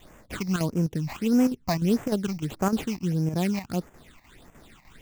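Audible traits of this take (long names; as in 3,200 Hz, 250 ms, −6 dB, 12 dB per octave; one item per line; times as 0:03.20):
aliases and images of a low sample rate 5,600 Hz, jitter 20%
phaser sweep stages 8, 1.6 Hz, lowest notch 420–4,000 Hz
chopped level 3.3 Hz, depth 60%, duty 85%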